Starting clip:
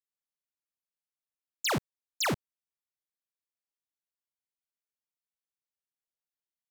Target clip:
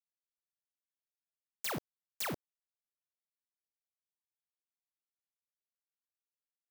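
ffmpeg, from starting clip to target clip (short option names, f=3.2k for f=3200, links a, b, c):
-af "acrusher=bits=8:mix=0:aa=0.000001,aeval=exprs='0.0447*sin(PI/2*4.47*val(0)/0.0447)':c=same,volume=-3dB"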